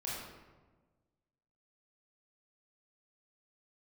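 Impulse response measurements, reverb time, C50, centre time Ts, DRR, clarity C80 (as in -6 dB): 1.3 s, -1.5 dB, 86 ms, -7.0 dB, 1.5 dB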